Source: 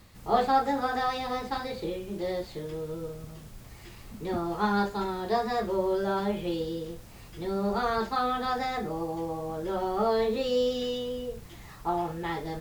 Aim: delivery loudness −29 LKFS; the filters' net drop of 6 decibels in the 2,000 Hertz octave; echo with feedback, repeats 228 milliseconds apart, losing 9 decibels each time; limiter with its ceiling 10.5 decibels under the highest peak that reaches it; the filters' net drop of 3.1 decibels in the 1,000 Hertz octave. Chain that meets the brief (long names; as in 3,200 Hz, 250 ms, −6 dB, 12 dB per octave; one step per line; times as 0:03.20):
parametric band 1,000 Hz −3 dB
parametric band 2,000 Hz −7 dB
brickwall limiter −22 dBFS
repeating echo 228 ms, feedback 35%, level −9 dB
level +3.5 dB